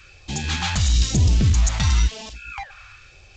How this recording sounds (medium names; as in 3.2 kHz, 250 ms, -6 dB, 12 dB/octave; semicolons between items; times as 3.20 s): phasing stages 2, 1 Hz, lowest notch 350–1300 Hz; G.722